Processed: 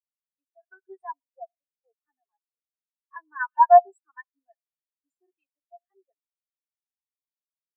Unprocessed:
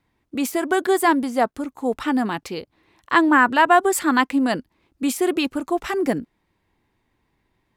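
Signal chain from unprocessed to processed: Bessel high-pass 610 Hz, order 8; treble shelf 5.2 kHz +7.5 dB; comb 7.3 ms, depth 43%; algorithmic reverb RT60 0.8 s, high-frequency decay 1×, pre-delay 30 ms, DRR 14.5 dB; spectral contrast expander 4:1; trim -1.5 dB

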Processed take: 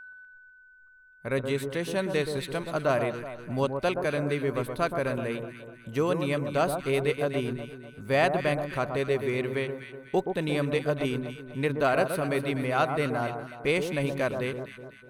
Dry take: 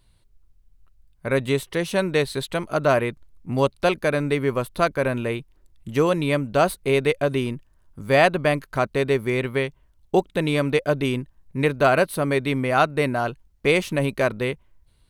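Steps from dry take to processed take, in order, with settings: spectral noise reduction 15 dB; in parallel at -12 dB: saturation -12.5 dBFS, distortion -16 dB; on the sum: whistle 1.5 kHz -35 dBFS; echo whose repeats swap between lows and highs 124 ms, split 1.3 kHz, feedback 64%, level -6 dB; trim -8.5 dB

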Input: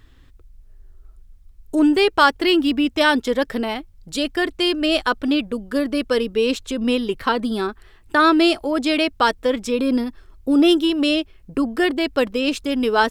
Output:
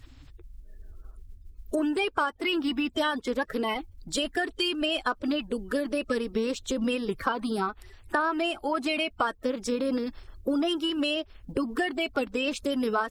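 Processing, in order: coarse spectral quantiser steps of 30 dB; dynamic bell 1.1 kHz, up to +7 dB, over -31 dBFS, Q 1.1; compression 6:1, threshold -25 dBFS, peak gain reduction 19 dB

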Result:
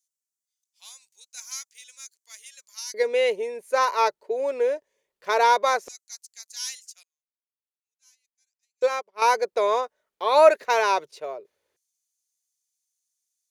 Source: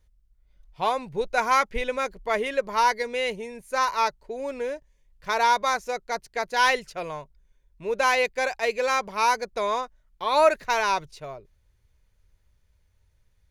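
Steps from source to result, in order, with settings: LFO high-pass square 0.17 Hz 440–6800 Hz; 7.03–9.22 s: upward expansion 2.5:1, over -42 dBFS

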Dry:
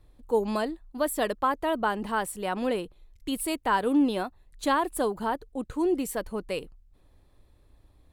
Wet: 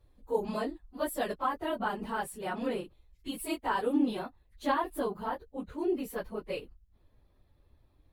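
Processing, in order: phase randomisation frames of 50 ms; peaking EQ 8 kHz -3.5 dB 0.75 oct, from 4.19 s -11 dB; trim -5.5 dB

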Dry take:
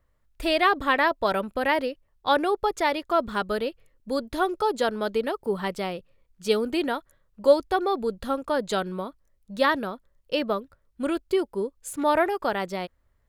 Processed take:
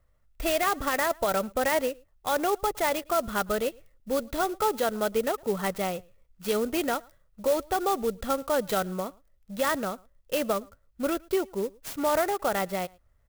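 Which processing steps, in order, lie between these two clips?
comb 1.5 ms, depth 32%; peak limiter -16.5 dBFS, peak gain reduction 11 dB; echo from a far wall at 19 m, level -26 dB; sampling jitter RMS 0.044 ms

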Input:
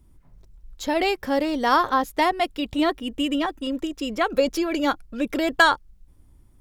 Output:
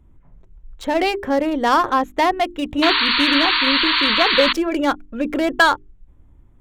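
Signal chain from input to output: local Wiener filter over 9 samples; hum notches 50/100/150/200/250/300/350/400 Hz; in parallel at -3 dB: hard clipper -18 dBFS, distortion -10 dB; on the sum: painted sound noise, 2.82–4.53 s, 900–4600 Hz -18 dBFS

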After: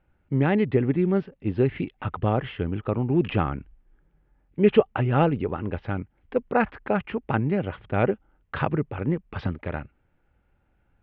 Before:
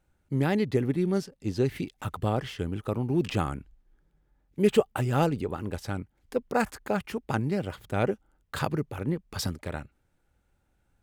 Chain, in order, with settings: steep low-pass 3 kHz 36 dB/octave; trim +4 dB

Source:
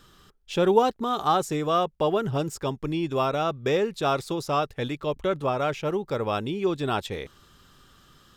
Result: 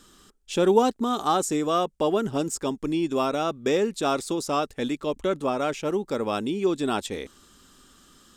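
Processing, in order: graphic EQ 125/250/8000 Hz -9/+9/+11 dB; trim -1.5 dB

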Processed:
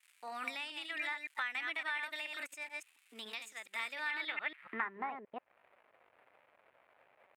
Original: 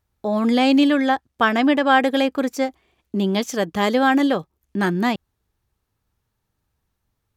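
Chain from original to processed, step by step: chunks repeated in reverse 142 ms, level -6 dB; crackle 430 per s -44 dBFS; band-pass sweep 6 kHz -> 510 Hz, 3.97–5.22 s; compression 16:1, threshold -44 dBFS, peak gain reduction 22.5 dB; FFT filter 400 Hz 0 dB, 2.1 kHz +14 dB, 5.4 kHz -16 dB, 8.4 kHz +1 dB; pitch shift +2 st; trim +2 dB

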